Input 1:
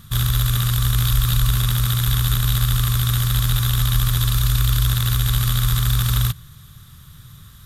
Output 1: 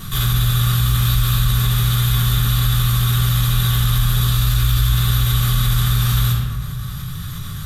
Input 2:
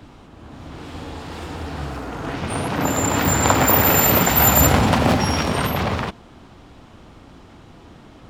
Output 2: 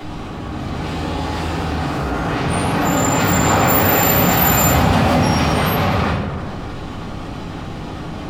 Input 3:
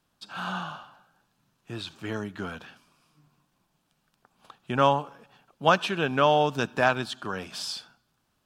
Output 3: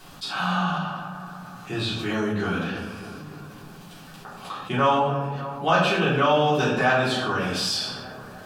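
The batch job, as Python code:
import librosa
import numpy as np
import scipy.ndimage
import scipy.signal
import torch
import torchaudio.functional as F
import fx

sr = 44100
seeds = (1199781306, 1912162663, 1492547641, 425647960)

p1 = fx.low_shelf(x, sr, hz=120.0, db=-6.5)
p2 = p1 + fx.echo_bbd(p1, sr, ms=298, stages=4096, feedback_pct=46, wet_db=-21, dry=0)
p3 = fx.room_shoebox(p2, sr, seeds[0], volume_m3=140.0, walls='mixed', distance_m=3.3)
p4 = fx.env_flatten(p3, sr, amount_pct=50)
y = p4 * 10.0 ** (-11.0 / 20.0)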